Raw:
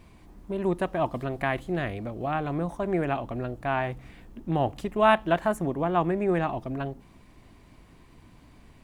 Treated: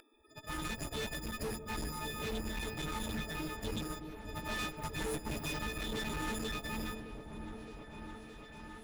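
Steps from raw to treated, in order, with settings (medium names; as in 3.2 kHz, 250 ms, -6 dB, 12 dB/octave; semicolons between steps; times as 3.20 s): partials quantised in pitch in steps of 6 st; spectral gate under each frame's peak -20 dB weak; treble shelf 2.6 kHz -11 dB; in parallel at +2 dB: compression, threshold -57 dBFS, peak gain reduction 16.5 dB; on the sum: valve stage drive 51 dB, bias 0.6; on a send: delay with an opening low-pass 617 ms, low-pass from 400 Hz, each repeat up 1 oct, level -6 dB; on the sum: trim +15.5 dB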